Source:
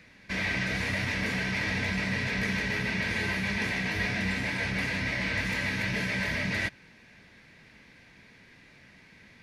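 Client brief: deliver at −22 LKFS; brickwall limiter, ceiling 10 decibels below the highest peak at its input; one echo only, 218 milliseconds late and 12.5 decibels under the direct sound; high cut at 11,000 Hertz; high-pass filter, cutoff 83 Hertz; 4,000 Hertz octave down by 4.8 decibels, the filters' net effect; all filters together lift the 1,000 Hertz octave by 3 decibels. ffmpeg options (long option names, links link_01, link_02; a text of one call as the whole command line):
ffmpeg -i in.wav -af "highpass=83,lowpass=11000,equalizer=frequency=1000:width_type=o:gain=4,equalizer=frequency=4000:width_type=o:gain=-6.5,alimiter=level_in=4.5dB:limit=-24dB:level=0:latency=1,volume=-4.5dB,aecho=1:1:218:0.237,volume=13.5dB" out.wav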